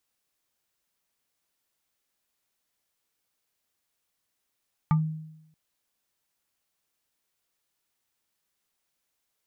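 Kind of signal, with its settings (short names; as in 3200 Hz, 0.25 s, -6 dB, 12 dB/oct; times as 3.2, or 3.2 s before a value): FM tone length 0.63 s, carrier 157 Hz, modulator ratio 6.62, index 0.69, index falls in 0.15 s exponential, decay 0.85 s, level -16.5 dB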